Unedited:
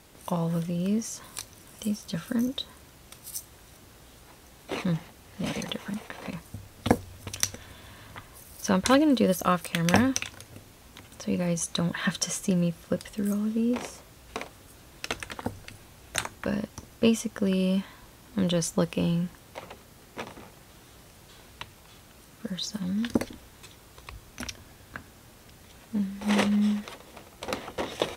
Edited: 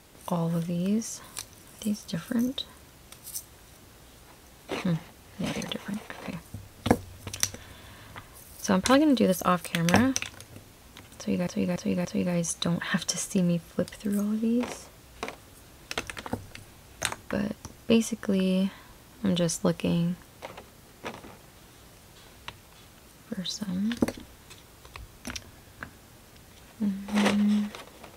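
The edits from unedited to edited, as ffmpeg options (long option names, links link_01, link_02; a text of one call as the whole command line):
ffmpeg -i in.wav -filter_complex "[0:a]asplit=4[link_01][link_02][link_03][link_04];[link_01]atrim=end=11.472[link_05];[link_02]atrim=start=11.178:end=11.472[link_06];[link_03]atrim=start=11.178:end=11.472[link_07];[link_04]atrim=start=11.178[link_08];[link_05][link_06]acrossfade=duration=0.004:curve1=hsin:curve2=hsin[link_09];[link_09][link_07]acrossfade=duration=0.004:curve1=hsin:curve2=hsin[link_10];[link_10][link_08]acrossfade=duration=0.004:curve1=hsin:curve2=hsin" out.wav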